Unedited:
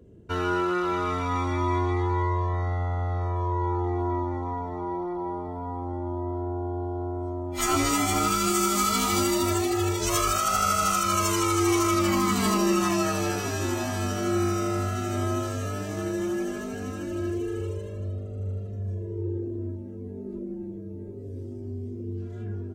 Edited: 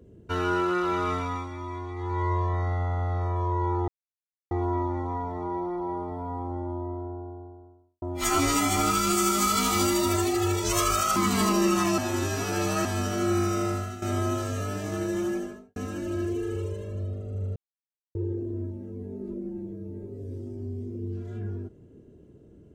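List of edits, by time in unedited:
1.12–2.32 dip -10.5 dB, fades 0.37 s
3.88 insert silence 0.63 s
5.65–7.39 studio fade out
10.53–12.21 cut
13.03–13.9 reverse
14.71–15.07 fade out, to -13 dB
16.31–16.81 studio fade out
18.61–19.2 mute

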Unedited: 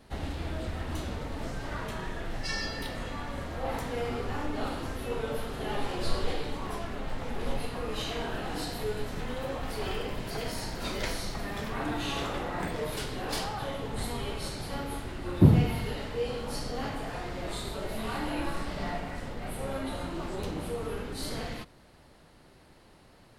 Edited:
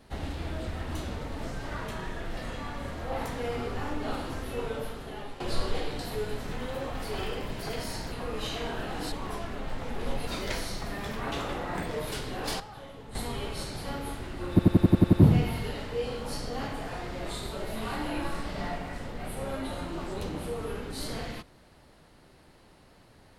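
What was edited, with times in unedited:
2.37–2.9 cut
5.16–5.93 fade out, to -12.5 dB
6.52–7.67 swap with 8.67–10.8
11.85–12.17 cut
13.45–14 gain -10 dB
15.35 stutter 0.09 s, 8 plays

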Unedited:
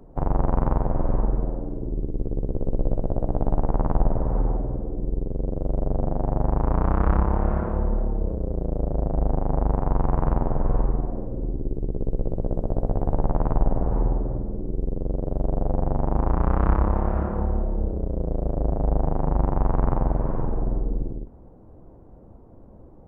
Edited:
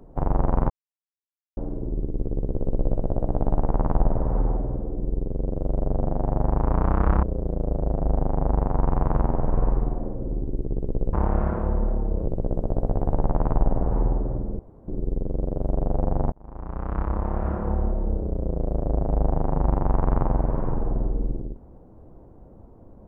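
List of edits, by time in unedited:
0.7–1.57 mute
7.23–8.35 move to 12.25
14.59 insert room tone 0.29 s
16.03–17.46 fade in

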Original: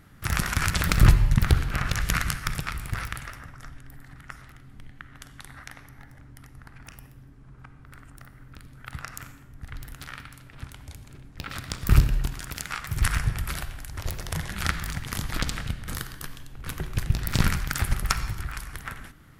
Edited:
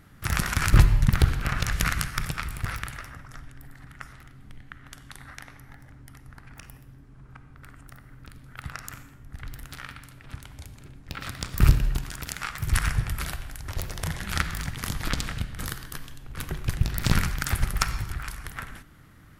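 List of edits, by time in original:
0.73–1.02 cut

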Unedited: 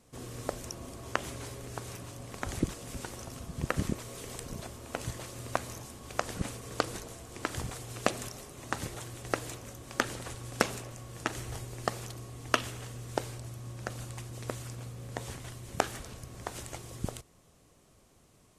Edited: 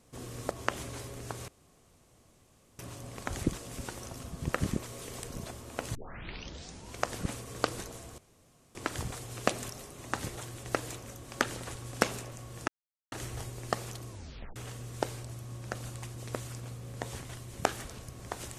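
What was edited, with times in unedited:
0.51–0.98 cut
1.95 insert room tone 1.31 s
5.11 tape start 1.07 s
7.34 insert room tone 0.57 s
11.27 insert silence 0.44 s
12.24 tape stop 0.47 s

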